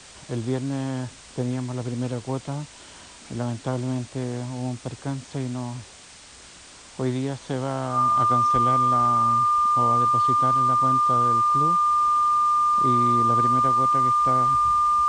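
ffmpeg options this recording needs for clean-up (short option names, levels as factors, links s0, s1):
-af "bandreject=f=1200:w=30,afwtdn=0.0071"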